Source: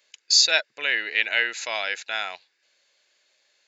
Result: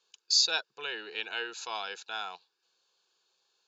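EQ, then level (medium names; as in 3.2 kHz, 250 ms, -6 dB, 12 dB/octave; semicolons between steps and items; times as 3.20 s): distance through air 79 m; static phaser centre 400 Hz, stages 8; -1.5 dB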